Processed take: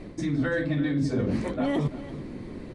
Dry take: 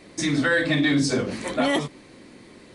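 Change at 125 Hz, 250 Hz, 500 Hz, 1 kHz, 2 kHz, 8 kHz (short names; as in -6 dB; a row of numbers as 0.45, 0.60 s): +1.0 dB, -2.5 dB, -4.5 dB, -7.5 dB, -11.0 dB, under -15 dB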